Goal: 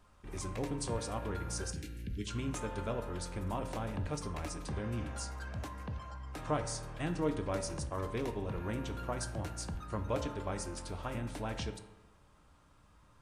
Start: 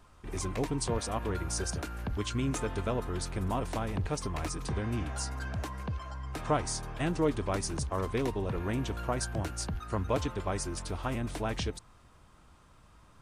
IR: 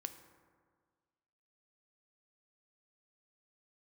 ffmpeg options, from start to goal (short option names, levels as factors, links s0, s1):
-filter_complex "[0:a]asplit=3[s0][s1][s2];[s0]afade=t=out:st=1.71:d=0.02[s3];[s1]asuperstop=centerf=860:order=8:qfactor=0.59,afade=t=in:st=1.71:d=0.02,afade=t=out:st=2.27:d=0.02[s4];[s2]afade=t=in:st=2.27:d=0.02[s5];[s3][s4][s5]amix=inputs=3:normalize=0[s6];[1:a]atrim=start_sample=2205,asetrate=74970,aresample=44100[s7];[s6][s7]afir=irnorm=-1:irlink=0,volume=1.33"